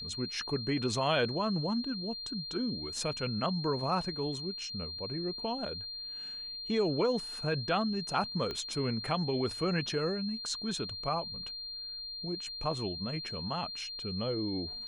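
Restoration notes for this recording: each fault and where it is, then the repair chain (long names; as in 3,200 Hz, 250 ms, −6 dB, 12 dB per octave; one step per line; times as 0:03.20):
whistle 4,200 Hz −39 dBFS
0:08.51: click −24 dBFS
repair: click removal
notch filter 4,200 Hz, Q 30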